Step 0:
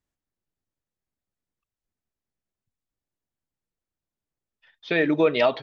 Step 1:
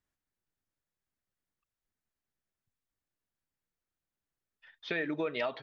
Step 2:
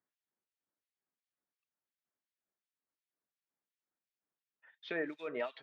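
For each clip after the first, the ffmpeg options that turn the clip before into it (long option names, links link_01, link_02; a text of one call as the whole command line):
ffmpeg -i in.wav -af "equalizer=frequency=1600:width_type=o:width=1.1:gain=5.5,acompressor=threshold=-32dB:ratio=2.5,volume=-3.5dB" out.wav
ffmpeg -i in.wav -filter_complex "[0:a]acrusher=bits=7:mode=log:mix=0:aa=0.000001,acrossover=split=1900[link_01][link_02];[link_01]aeval=exprs='val(0)*(1-1/2+1/2*cos(2*PI*2.8*n/s))':channel_layout=same[link_03];[link_02]aeval=exprs='val(0)*(1-1/2-1/2*cos(2*PI*2.8*n/s))':channel_layout=same[link_04];[link_03][link_04]amix=inputs=2:normalize=0,highpass=230,lowpass=3300,volume=1dB" out.wav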